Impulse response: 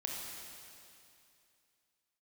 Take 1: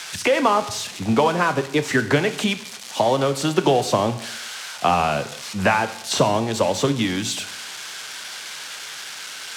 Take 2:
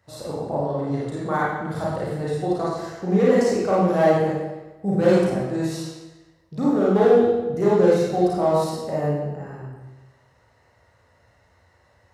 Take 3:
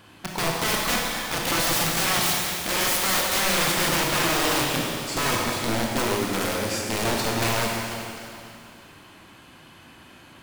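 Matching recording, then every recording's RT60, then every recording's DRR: 3; 0.80, 1.1, 2.6 seconds; 10.5, −7.5, −2.0 decibels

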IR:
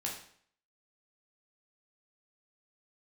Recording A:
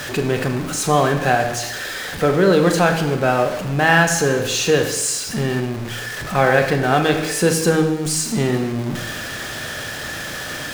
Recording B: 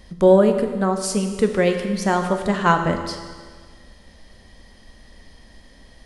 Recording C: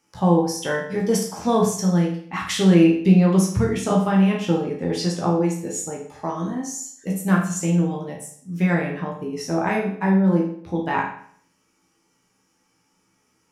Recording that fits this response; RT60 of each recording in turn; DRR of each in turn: C; 0.95, 1.6, 0.60 seconds; 4.5, 5.0, −3.0 decibels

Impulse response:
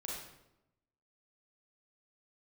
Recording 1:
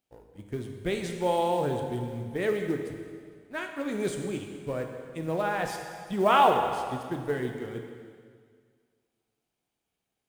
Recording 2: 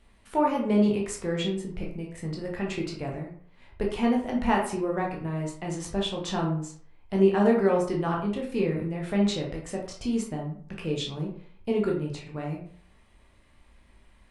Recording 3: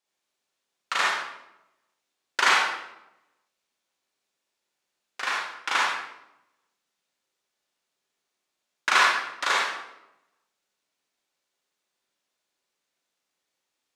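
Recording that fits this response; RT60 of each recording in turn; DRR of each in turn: 3; 2.0, 0.55, 0.90 seconds; 3.5, −1.5, −4.5 decibels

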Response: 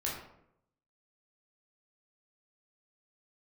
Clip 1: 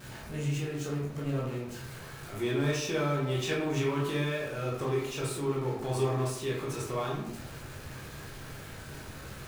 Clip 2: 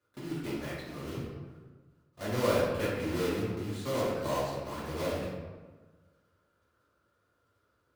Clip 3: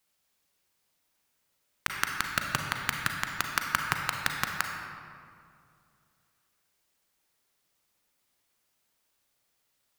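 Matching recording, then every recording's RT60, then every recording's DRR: 1; 0.75, 1.4, 2.3 seconds; −5.0, −10.0, 2.0 decibels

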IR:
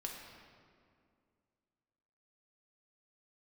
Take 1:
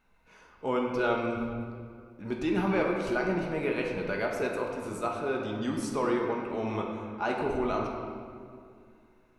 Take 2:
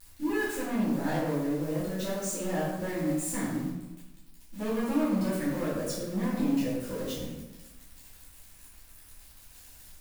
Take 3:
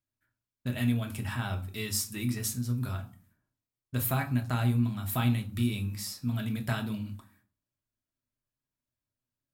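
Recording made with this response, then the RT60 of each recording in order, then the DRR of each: 1; 2.3, 1.1, 0.45 seconds; −0.5, −11.5, 2.5 decibels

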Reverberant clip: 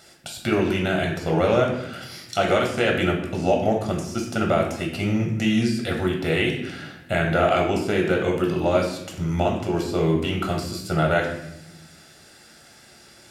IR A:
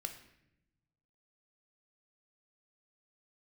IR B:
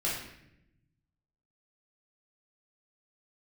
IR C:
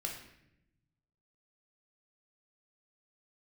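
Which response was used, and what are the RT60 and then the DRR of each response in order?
C; 0.80, 0.80, 0.80 seconds; 6.0, −7.0, 0.0 decibels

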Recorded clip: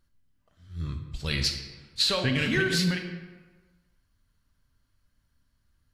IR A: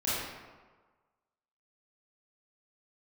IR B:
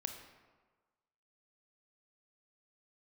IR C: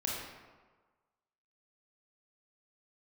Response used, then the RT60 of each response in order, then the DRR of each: B; 1.4, 1.4, 1.4 seconds; −11.0, 5.0, −4.0 decibels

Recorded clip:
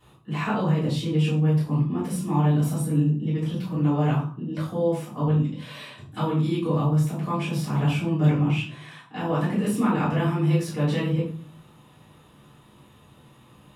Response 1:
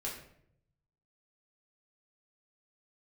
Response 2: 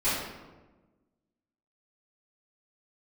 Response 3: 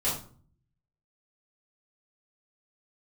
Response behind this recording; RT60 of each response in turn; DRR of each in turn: 3; 0.70, 1.2, 0.45 seconds; −5.0, −15.5, −10.0 decibels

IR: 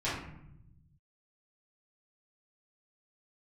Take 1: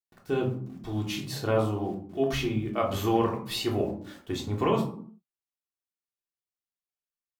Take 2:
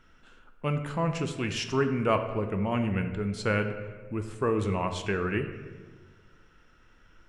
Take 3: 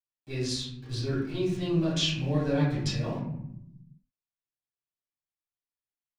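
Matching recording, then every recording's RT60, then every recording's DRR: 3; 0.55, 1.5, 0.80 seconds; −1.0, 6.5, −11.0 decibels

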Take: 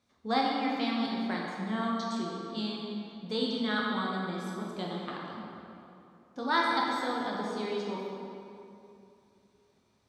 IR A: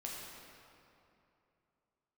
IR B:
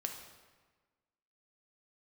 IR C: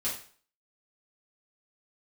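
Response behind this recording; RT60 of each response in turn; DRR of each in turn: A; 2.8, 1.4, 0.45 seconds; −4.0, 3.0, −8.0 decibels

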